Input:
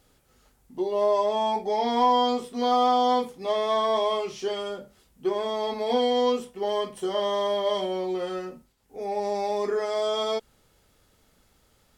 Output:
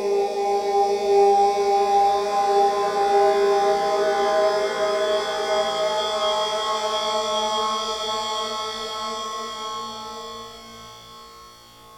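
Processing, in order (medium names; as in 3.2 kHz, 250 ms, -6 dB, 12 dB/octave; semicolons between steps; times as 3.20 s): flutter echo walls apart 3 m, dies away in 1.2 s; harmonic-percussive split percussive +9 dB; Paulstretch 6.6×, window 1.00 s, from 9.13 s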